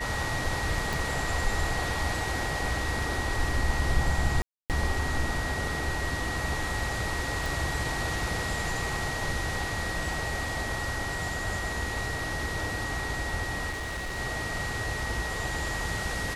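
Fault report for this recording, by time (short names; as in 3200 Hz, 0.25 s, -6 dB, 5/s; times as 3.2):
tone 1900 Hz -34 dBFS
0.93 pop
4.42–4.7 gap 0.278 s
7.46 pop
13.7–14.19 clipped -30.5 dBFS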